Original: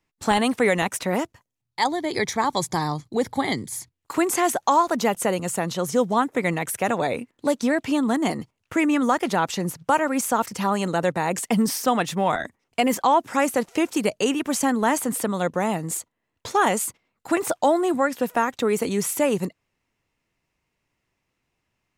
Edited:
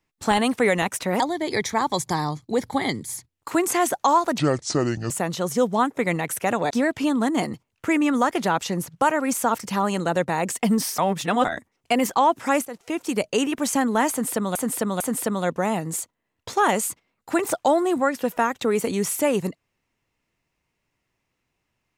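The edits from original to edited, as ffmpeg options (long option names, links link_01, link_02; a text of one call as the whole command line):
ffmpeg -i in.wav -filter_complex "[0:a]asplit=10[link_01][link_02][link_03][link_04][link_05][link_06][link_07][link_08][link_09][link_10];[link_01]atrim=end=1.202[link_11];[link_02]atrim=start=1.828:end=5.014[link_12];[link_03]atrim=start=5.01:end=5.48,asetpts=PTS-STARTPTS,asetrate=28665,aresample=44100[link_13];[link_04]atrim=start=5.476:end=7.082[link_14];[link_05]atrim=start=7.578:end=11.862[link_15];[link_06]atrim=start=11.858:end=12.322,asetpts=PTS-STARTPTS,areverse[link_16];[link_07]atrim=start=12.318:end=13.53,asetpts=PTS-STARTPTS,afade=type=out:start_time=1.208:duration=0.004:curve=hsin:silence=0.149624[link_17];[link_08]atrim=start=13.53:end=15.432,asetpts=PTS-STARTPTS,afade=type=in:duration=0.61:silence=0.149624[link_18];[link_09]atrim=start=14.978:end=15.432[link_19];[link_10]atrim=start=14.978[link_20];[link_11][link_12]acrossfade=duration=0.004:curve1=hsin:curve2=hsin[link_21];[link_21][link_13]acrossfade=duration=0.004:curve1=hsin:curve2=hsin[link_22];[link_22][link_14]acrossfade=duration=0.004:curve1=hsin:curve2=hsin[link_23];[link_23][link_15]acrossfade=duration=0.004:curve1=hsin:curve2=hsin[link_24];[link_24][link_16]acrossfade=duration=0.004:curve1=hsin:curve2=hsin[link_25];[link_17][link_18]concat=n=2:v=0:a=1[link_26];[link_25][link_26]acrossfade=duration=0.004:curve1=hsin:curve2=hsin[link_27];[link_27][link_19]acrossfade=duration=0.004:curve1=hsin:curve2=hsin[link_28];[link_28][link_20]acrossfade=duration=0.004:curve1=hsin:curve2=hsin" out.wav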